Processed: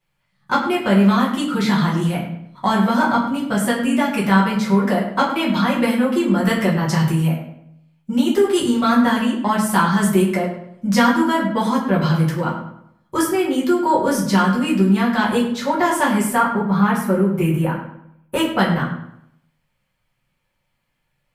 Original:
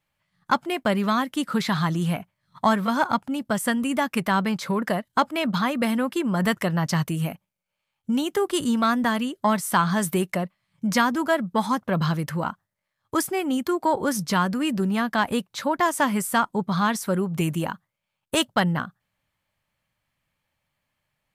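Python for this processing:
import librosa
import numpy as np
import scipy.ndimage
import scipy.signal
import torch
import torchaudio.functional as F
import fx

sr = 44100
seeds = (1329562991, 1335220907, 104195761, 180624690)

p1 = fx.band_shelf(x, sr, hz=5200.0, db=-10.0, octaves=1.7, at=(16.34, 18.59))
p2 = p1 + fx.echo_filtered(p1, sr, ms=101, feedback_pct=40, hz=3800.0, wet_db=-10.0, dry=0)
p3 = fx.room_shoebox(p2, sr, seeds[0], volume_m3=39.0, walls='mixed', distance_m=1.1)
y = p3 * 10.0 ** (-2.5 / 20.0)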